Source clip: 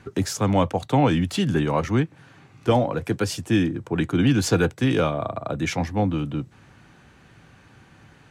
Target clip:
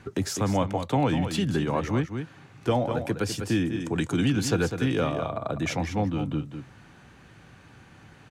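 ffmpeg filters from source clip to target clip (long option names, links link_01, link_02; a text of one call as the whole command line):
ffmpeg -i in.wav -filter_complex "[0:a]aecho=1:1:199:0.335,asplit=2[link_01][link_02];[link_02]acompressor=threshold=-27dB:ratio=6,volume=3dB[link_03];[link_01][link_03]amix=inputs=2:normalize=0,asettb=1/sr,asplit=3[link_04][link_05][link_06];[link_04]atrim=end=3.804[link_07];[link_05]atrim=start=3.8:end=4.3,asetpts=PTS-STARTPTS,afade=type=in:duration=0.004:curve=qsin,afade=type=out:start_time=0.496:duration=0.004:curve=qsin,equalizer=frequency=7600:width_type=o:width=1.4:gain=12.5[link_08];[link_06]atrim=start=4.296[link_09];[link_07][link_08]acrossfade=duration=0.004:curve1=hsin:curve2=qsin[link_10];[link_10][link_09]acrossfade=duration=0.004:curve1=qsin:curve2=hsin,volume=-8dB" out.wav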